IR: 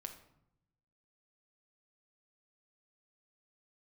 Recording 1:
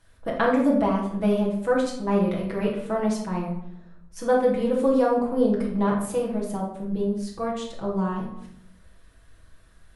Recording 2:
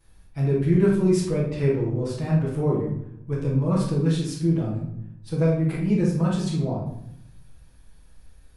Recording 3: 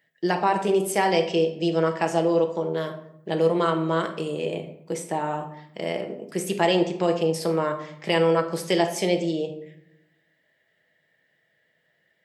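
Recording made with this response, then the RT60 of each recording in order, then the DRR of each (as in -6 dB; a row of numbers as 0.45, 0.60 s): 3; 0.75, 0.75, 0.75 s; -4.5, -11.5, 4.5 dB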